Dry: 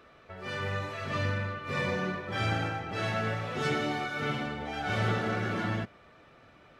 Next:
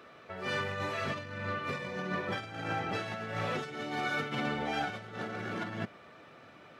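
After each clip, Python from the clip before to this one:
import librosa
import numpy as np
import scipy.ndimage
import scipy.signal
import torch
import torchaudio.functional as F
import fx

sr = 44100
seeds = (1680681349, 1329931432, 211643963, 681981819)

y = fx.over_compress(x, sr, threshold_db=-34.0, ratio=-0.5)
y = scipy.signal.sosfilt(scipy.signal.butter(2, 130.0, 'highpass', fs=sr, output='sos'), y)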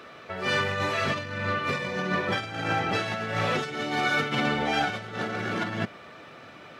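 y = fx.peak_eq(x, sr, hz=4500.0, db=3.0, octaves=2.5)
y = y * 10.0 ** (7.0 / 20.0)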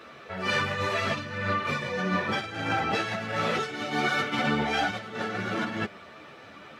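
y = fx.ensemble(x, sr)
y = y * 10.0 ** (2.5 / 20.0)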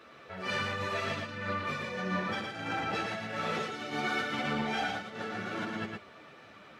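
y = x + 10.0 ** (-4.5 / 20.0) * np.pad(x, (int(114 * sr / 1000.0), 0))[:len(x)]
y = y * 10.0 ** (-7.0 / 20.0)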